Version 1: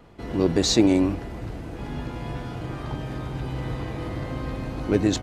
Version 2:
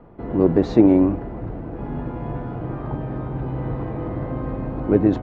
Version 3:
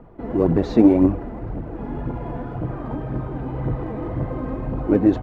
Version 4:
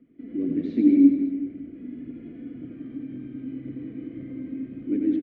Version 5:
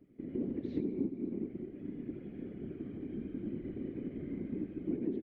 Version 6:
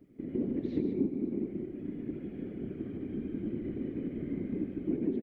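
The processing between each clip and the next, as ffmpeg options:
-af "lowpass=1.1k,equalizer=f=71:t=o:w=0.83:g=-6,volume=5dB"
-af "aphaser=in_gain=1:out_gain=1:delay=4.7:decay=0.46:speed=1.9:type=triangular,volume=-1dB"
-filter_complex "[0:a]asplit=3[a][b][c];[a]bandpass=f=270:t=q:w=8,volume=0dB[d];[b]bandpass=f=2.29k:t=q:w=8,volume=-6dB[e];[c]bandpass=f=3.01k:t=q:w=8,volume=-9dB[f];[d][e][f]amix=inputs=3:normalize=0,asplit=2[g][h];[h]aecho=0:1:90|189|297.9|417.7|549.5:0.631|0.398|0.251|0.158|0.1[i];[g][i]amix=inputs=2:normalize=0"
-af "acompressor=threshold=-28dB:ratio=16,afftfilt=real='hypot(re,im)*cos(2*PI*random(0))':imag='hypot(re,im)*sin(2*PI*random(1))':win_size=512:overlap=0.75,volume=1.5dB"
-af "aecho=1:1:150:0.376,volume=3.5dB"

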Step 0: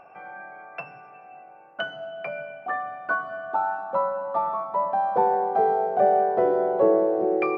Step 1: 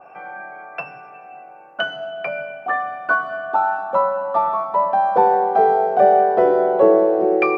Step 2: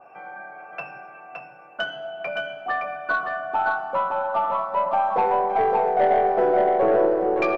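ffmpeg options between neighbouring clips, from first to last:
-af "highpass=f=150:p=1,bandreject=f=2.1k:w=17,adynamicequalizer=threshold=0.0178:dfrequency=1700:dqfactor=0.7:tfrequency=1700:tqfactor=0.7:attack=5:release=100:ratio=0.375:range=2:mode=boostabove:tftype=highshelf,volume=6.5dB"
-filter_complex "[0:a]flanger=delay=8.5:depth=8.6:regen=-73:speed=0.37:shape=sinusoidal,aeval=exprs='(tanh(4.47*val(0)+0.1)-tanh(0.1))/4.47':c=same,asplit=2[a][b];[b]aecho=0:1:567:0.596[c];[a][c]amix=inputs=2:normalize=0"

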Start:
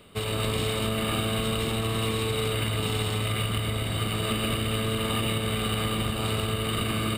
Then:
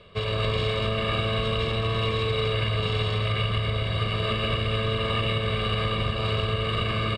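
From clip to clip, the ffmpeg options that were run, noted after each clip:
-af "lowpass=f=5.2k:w=0.5412,lowpass=f=5.2k:w=1.3066,aecho=1:1:1.8:0.66"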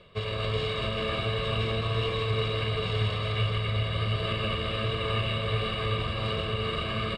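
-af "areverse,acompressor=mode=upward:threshold=-30dB:ratio=2.5,areverse,flanger=delay=5.1:depth=8.5:regen=64:speed=1.4:shape=triangular,aecho=1:1:388:0.531"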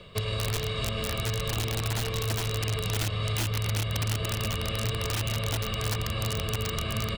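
-filter_complex "[0:a]aeval=exprs='(mod(10.6*val(0)+1,2)-1)/10.6':c=same,acrossover=split=110|4200[a][b][c];[a]acompressor=threshold=-41dB:ratio=4[d];[b]acompressor=threshold=-38dB:ratio=4[e];[c]acompressor=threshold=-48dB:ratio=4[f];[d][e][f]amix=inputs=3:normalize=0,bass=f=250:g=4,treble=f=4k:g=8,volume=4.5dB"

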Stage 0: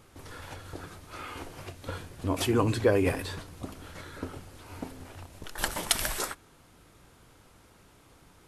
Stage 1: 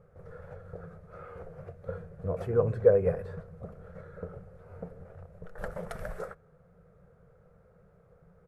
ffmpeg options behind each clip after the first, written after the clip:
-af "firequalizer=gain_entry='entry(120,0);entry(170,9);entry(280,-21);entry(470,9);entry(940,-12);entry(1300,-3);entry(3000,-26)':delay=0.05:min_phase=1,volume=-2.5dB"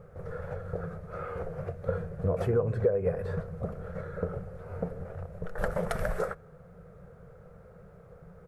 -af "acompressor=threshold=-32dB:ratio=6,volume=8.5dB"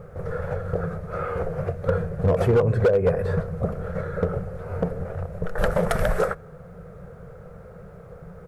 -af "asoftclip=type=hard:threshold=-22dB,volume=9dB"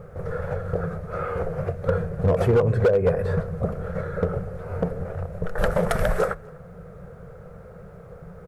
-filter_complex "[0:a]asplit=2[a][b];[b]adelay=250.7,volume=-25dB,highshelf=f=4k:g=-5.64[c];[a][c]amix=inputs=2:normalize=0"

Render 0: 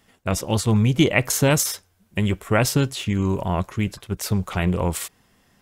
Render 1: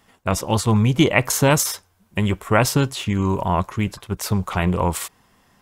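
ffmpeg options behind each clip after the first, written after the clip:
-af "equalizer=f=1k:w=1.8:g=6.5,volume=1dB"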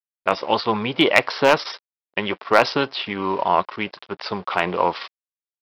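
-af "aresample=11025,aeval=exprs='sgn(val(0))*max(abs(val(0))-0.00708,0)':c=same,aresample=44100,highpass=420,volume=7.5dB,asoftclip=hard,volume=-7.5dB,volume=4.5dB"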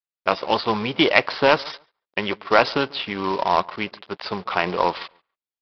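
-filter_complex "[0:a]aresample=11025,acrusher=bits=3:mode=log:mix=0:aa=0.000001,aresample=44100,asplit=2[a][b];[b]adelay=141,lowpass=f=1.8k:p=1,volume=-23.5dB,asplit=2[c][d];[d]adelay=141,lowpass=f=1.8k:p=1,volume=0.17[e];[a][c][e]amix=inputs=3:normalize=0,volume=-1dB"

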